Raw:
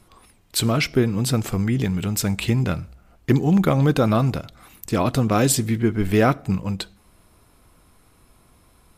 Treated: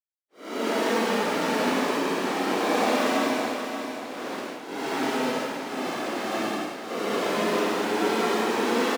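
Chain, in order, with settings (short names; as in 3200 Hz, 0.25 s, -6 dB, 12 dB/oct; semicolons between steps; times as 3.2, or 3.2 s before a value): rotary speaker horn 0.65 Hz, later 5.5 Hz, at 3.86; comb 4.5 ms, depth 71%; Schmitt trigger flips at -16.5 dBFS; Paulstretch 17×, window 0.05 s, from 4.89; HPF 300 Hz 24 dB/oct; high shelf 8100 Hz -12 dB; on a send: feedback echo 0.579 s, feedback 40%, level -8 dB; on the sum: gain +4 dB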